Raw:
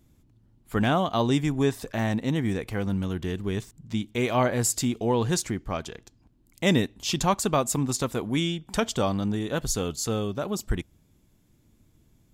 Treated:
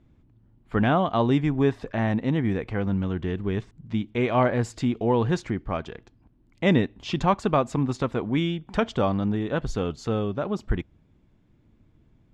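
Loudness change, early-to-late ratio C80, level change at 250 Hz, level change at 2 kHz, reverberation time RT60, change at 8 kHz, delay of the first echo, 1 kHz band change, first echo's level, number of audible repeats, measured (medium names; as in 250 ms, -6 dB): +1.0 dB, no reverb, +2.0 dB, +0.5 dB, no reverb, -17.5 dB, no echo, +2.0 dB, no echo, no echo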